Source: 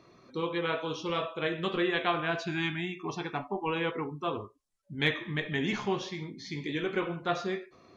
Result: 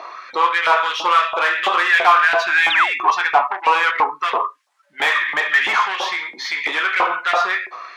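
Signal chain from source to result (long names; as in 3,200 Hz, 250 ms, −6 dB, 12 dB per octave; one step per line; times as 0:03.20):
in parallel at −3 dB: downward compressor, threshold −40 dBFS, peak gain reduction 17 dB
on the sum: mid-hump overdrive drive 23 dB, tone 1,400 Hz, clips at −12.5 dBFS
sound drawn into the spectrogram fall, 0:02.70–0:02.99, 210–4,100 Hz −26 dBFS
auto-filter high-pass saw up 3 Hz 740–2,100 Hz
level +6.5 dB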